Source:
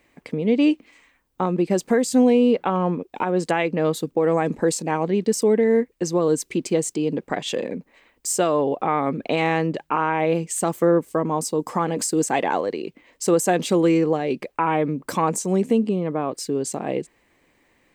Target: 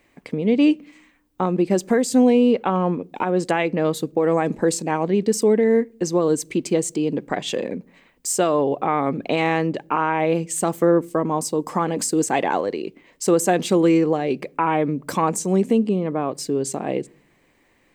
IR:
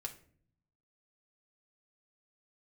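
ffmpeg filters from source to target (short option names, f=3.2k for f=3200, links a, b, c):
-filter_complex "[0:a]asplit=2[a][b];[1:a]atrim=start_sample=2205,lowshelf=f=490:g=9.5[c];[b][c]afir=irnorm=-1:irlink=0,volume=-17.5dB[d];[a][d]amix=inputs=2:normalize=0"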